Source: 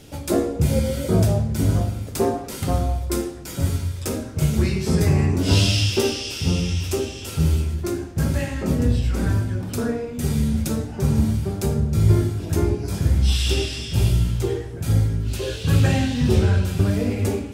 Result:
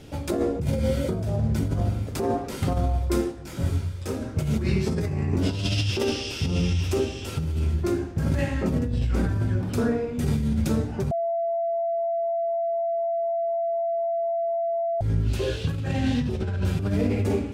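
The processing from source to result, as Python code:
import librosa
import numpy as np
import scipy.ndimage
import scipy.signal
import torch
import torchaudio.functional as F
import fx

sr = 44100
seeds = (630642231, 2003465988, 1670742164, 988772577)

y = fx.detune_double(x, sr, cents=30, at=(3.31, 4.2), fade=0.02)
y = fx.edit(y, sr, fx.bleep(start_s=11.11, length_s=3.9, hz=674.0, db=-14.5), tone=tone)
y = fx.high_shelf(y, sr, hz=5100.0, db=-11.0)
y = fx.over_compress(y, sr, threshold_db=-22.0, ratio=-1.0)
y = y * 10.0 ** (-2.0 / 20.0)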